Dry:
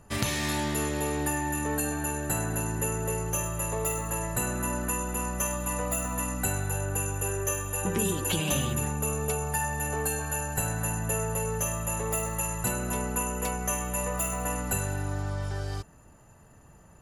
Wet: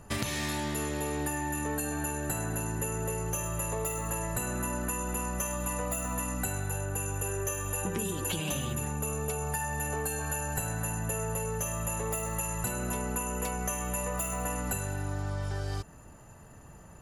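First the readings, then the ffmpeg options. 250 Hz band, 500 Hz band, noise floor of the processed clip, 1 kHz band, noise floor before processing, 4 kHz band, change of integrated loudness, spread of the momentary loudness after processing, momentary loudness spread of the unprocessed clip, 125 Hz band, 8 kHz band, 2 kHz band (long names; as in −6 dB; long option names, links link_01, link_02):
−3.0 dB, −3.0 dB, −50 dBFS, −3.0 dB, −54 dBFS, −4.0 dB, −3.0 dB, 1 LU, 3 LU, −2.5 dB, −3.5 dB, −3.0 dB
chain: -af "acompressor=threshold=-33dB:ratio=6,volume=3.5dB"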